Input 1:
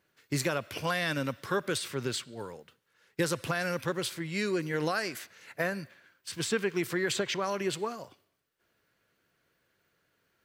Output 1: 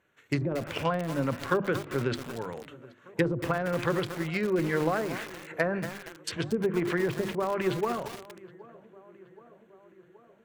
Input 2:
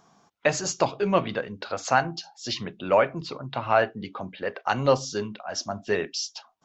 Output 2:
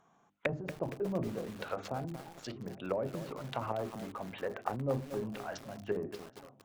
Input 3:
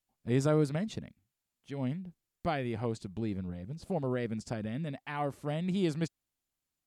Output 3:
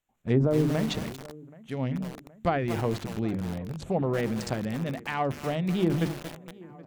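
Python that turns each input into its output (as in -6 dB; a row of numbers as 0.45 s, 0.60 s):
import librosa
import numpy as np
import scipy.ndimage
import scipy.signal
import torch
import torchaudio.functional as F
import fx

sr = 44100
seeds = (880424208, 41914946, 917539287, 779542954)

y = fx.wiener(x, sr, points=9)
y = F.preemphasis(torch.from_numpy(y), 0.8).numpy()
y = fx.hum_notches(y, sr, base_hz=50, count=7)
y = fx.env_lowpass_down(y, sr, base_hz=390.0, full_db=-36.0)
y = fx.high_shelf(y, sr, hz=3200.0, db=-5.5)
y = fx.transient(y, sr, attack_db=2, sustain_db=8)
y = fx.echo_tape(y, sr, ms=773, feedback_pct=72, wet_db=-20.5, lp_hz=1900.0, drive_db=15.0, wow_cents=29)
y = fx.echo_crushed(y, sr, ms=232, feedback_pct=55, bits=8, wet_db=-9.0)
y = y * 10.0 ** (-12 / 20.0) / np.max(np.abs(y))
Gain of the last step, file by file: +17.0 dB, +6.0 dB, +19.0 dB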